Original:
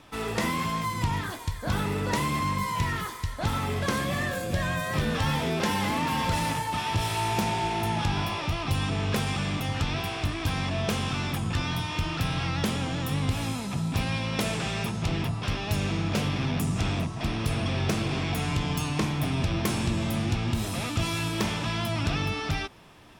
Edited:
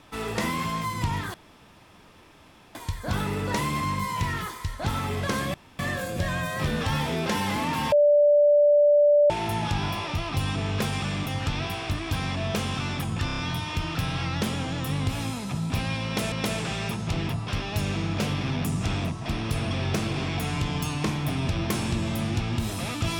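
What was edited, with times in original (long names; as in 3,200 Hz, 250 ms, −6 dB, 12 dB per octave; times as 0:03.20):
0:01.34: splice in room tone 1.41 s
0:04.13: splice in room tone 0.25 s
0:06.26–0:07.64: beep over 586 Hz −14.5 dBFS
0:11.60: stutter 0.03 s, 5 plays
0:14.27–0:14.54: repeat, 2 plays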